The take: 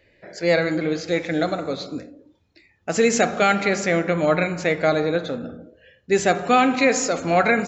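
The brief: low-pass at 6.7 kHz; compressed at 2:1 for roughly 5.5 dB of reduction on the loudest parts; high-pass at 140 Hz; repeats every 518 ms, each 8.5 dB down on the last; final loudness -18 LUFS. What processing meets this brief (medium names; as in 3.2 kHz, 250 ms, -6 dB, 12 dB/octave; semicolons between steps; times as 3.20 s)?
high-pass 140 Hz; low-pass 6.7 kHz; compression 2:1, threshold -23 dBFS; feedback delay 518 ms, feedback 38%, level -8.5 dB; trim +7 dB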